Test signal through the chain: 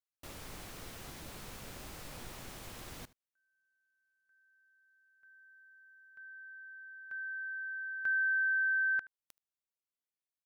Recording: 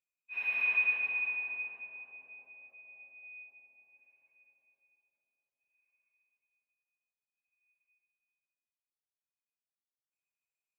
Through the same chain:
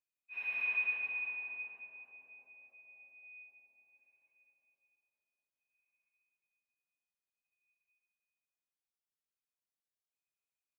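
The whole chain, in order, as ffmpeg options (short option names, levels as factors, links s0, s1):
-af "aecho=1:1:76:0.0944,volume=0.562"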